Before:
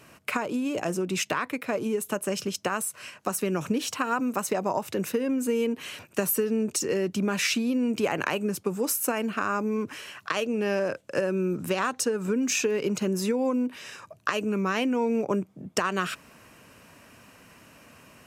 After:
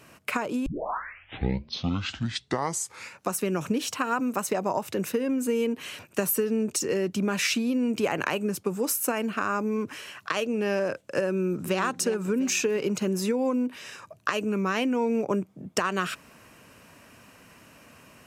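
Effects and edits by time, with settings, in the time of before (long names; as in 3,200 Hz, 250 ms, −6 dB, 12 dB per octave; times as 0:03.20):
0:00.66: tape start 2.71 s
0:11.30–0:11.79: delay throw 350 ms, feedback 50%, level −12 dB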